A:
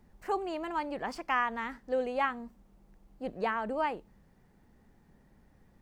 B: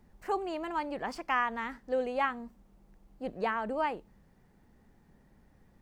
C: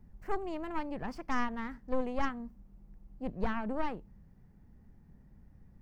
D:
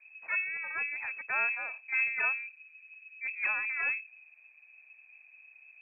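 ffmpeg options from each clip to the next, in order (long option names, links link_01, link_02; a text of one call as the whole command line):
ffmpeg -i in.wav -af anull out.wav
ffmpeg -i in.wav -af "aeval=exprs='0.158*(cos(1*acos(clip(val(0)/0.158,-1,1)))-cos(1*PI/2))+0.0355*(cos(4*acos(clip(val(0)/0.158,-1,1)))-cos(4*PI/2))':channel_layout=same,aexciter=amount=2.6:drive=3.9:freq=4900,bass=frequency=250:gain=13,treble=frequency=4000:gain=-12,volume=-6dB" out.wav
ffmpeg -i in.wav -af "lowpass=frequency=2200:width_type=q:width=0.5098,lowpass=frequency=2200:width_type=q:width=0.6013,lowpass=frequency=2200:width_type=q:width=0.9,lowpass=frequency=2200:width_type=q:width=2.563,afreqshift=-2600" out.wav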